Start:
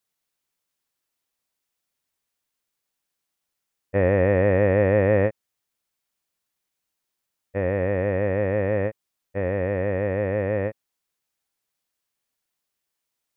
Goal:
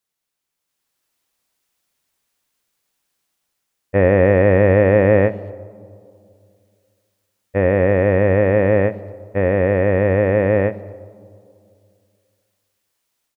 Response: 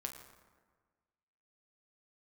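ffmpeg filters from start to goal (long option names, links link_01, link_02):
-filter_complex "[0:a]dynaudnorm=framelen=530:gausssize=3:maxgain=9dB,asplit=2[link_01][link_02];[link_02]adelay=230,highpass=300,lowpass=3400,asoftclip=type=hard:threshold=-10dB,volume=-27dB[link_03];[link_01][link_03]amix=inputs=2:normalize=0,asplit=2[link_04][link_05];[1:a]atrim=start_sample=2205,asetrate=26019,aresample=44100[link_06];[link_05][link_06]afir=irnorm=-1:irlink=0,volume=-11dB[link_07];[link_04][link_07]amix=inputs=2:normalize=0,volume=-2dB"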